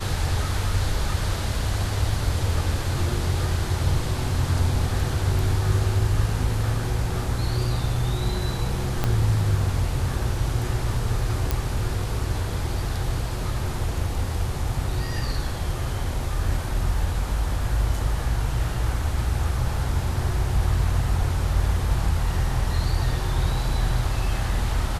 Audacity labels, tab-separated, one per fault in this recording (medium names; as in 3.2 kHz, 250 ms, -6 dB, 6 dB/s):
9.040000	9.040000	pop -9 dBFS
11.510000	11.510000	pop -8 dBFS